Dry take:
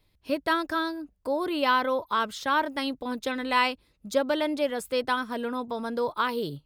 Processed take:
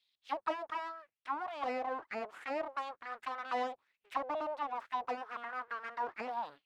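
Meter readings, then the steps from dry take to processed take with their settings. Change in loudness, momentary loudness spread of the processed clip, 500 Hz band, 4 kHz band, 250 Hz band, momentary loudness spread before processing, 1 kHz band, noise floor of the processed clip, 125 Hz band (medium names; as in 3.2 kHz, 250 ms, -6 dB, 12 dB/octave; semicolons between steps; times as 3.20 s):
-11.5 dB, 5 LU, -12.5 dB, -19.5 dB, -19.0 dB, 8 LU, -8.5 dB, under -85 dBFS, no reading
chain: full-wave rectifier; auto-wah 680–3600 Hz, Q 3.1, down, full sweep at -22.5 dBFS; trim +2.5 dB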